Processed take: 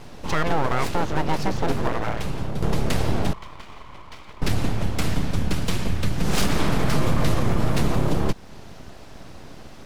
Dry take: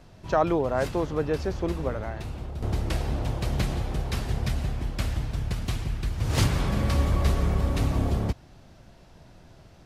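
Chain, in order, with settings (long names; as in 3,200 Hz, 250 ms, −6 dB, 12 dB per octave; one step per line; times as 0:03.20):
in parallel at −1.5 dB: downward compressor, threshold −35 dBFS, peak gain reduction 17 dB
on the sum: brickwall limiter −16 dBFS, peak gain reduction 7.5 dB
0:03.33–0:04.42: formant filter e
full-wave rectification
level +6.5 dB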